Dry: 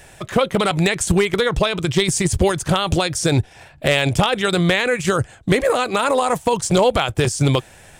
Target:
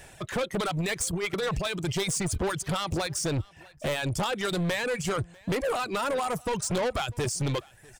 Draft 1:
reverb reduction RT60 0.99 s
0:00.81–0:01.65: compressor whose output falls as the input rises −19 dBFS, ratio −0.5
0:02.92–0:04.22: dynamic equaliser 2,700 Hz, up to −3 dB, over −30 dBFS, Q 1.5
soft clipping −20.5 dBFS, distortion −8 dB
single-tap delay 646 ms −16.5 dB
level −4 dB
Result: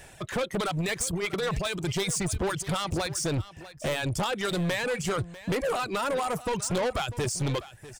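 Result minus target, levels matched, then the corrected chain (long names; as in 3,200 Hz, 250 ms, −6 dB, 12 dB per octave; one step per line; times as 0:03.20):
echo-to-direct +8.5 dB
reverb reduction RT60 0.99 s
0:00.81–0:01.65: compressor whose output falls as the input rises −19 dBFS, ratio −0.5
0:02.92–0:04.22: dynamic equaliser 2,700 Hz, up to −3 dB, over −30 dBFS, Q 1.5
soft clipping −20.5 dBFS, distortion −8 dB
single-tap delay 646 ms −25 dB
level −4 dB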